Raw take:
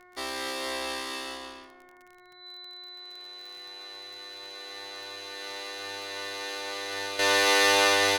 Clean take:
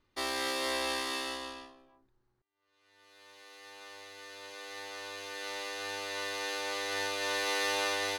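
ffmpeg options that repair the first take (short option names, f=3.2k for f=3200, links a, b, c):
-af "adeclick=t=4,bandreject=f=361.1:t=h:w=4,bandreject=f=722.2:t=h:w=4,bandreject=f=1.0833k:t=h:w=4,bandreject=f=1.4444k:t=h:w=4,bandreject=f=1.8055k:t=h:w=4,bandreject=f=2.1666k:t=h:w=4,bandreject=f=4k:w=30,asetnsamples=n=441:p=0,asendcmd='7.19 volume volume -10dB',volume=0dB"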